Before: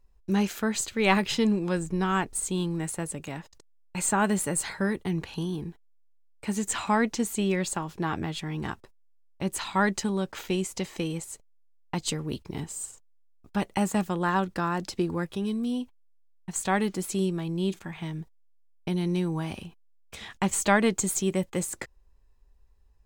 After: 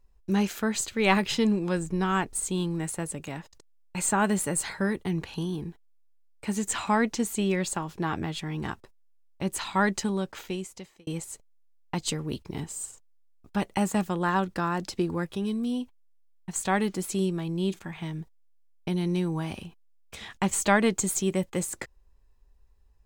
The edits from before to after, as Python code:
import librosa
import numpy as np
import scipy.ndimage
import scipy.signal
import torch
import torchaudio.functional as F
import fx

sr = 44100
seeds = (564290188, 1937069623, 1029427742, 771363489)

y = fx.edit(x, sr, fx.fade_out_span(start_s=10.11, length_s=0.96), tone=tone)